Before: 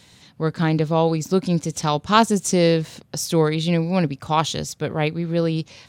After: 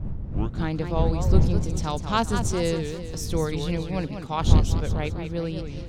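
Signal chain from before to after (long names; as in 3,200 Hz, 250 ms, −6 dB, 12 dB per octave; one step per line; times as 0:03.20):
turntable start at the beginning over 0.62 s
wind on the microphone 100 Hz −17 dBFS
feedback echo with a swinging delay time 199 ms, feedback 45%, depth 201 cents, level −8 dB
level −8.5 dB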